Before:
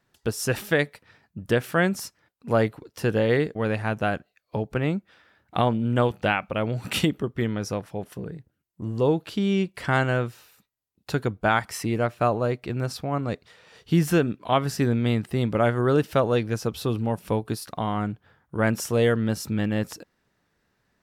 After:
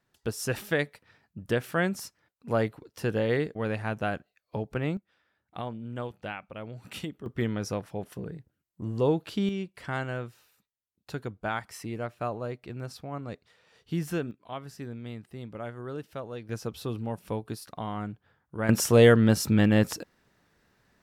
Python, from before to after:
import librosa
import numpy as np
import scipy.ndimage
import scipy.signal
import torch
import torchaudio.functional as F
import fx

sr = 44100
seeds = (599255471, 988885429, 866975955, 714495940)

y = fx.gain(x, sr, db=fx.steps((0.0, -5.0), (4.97, -14.0), (7.26, -3.0), (9.49, -10.0), (14.31, -16.5), (16.49, -7.5), (18.69, 4.0)))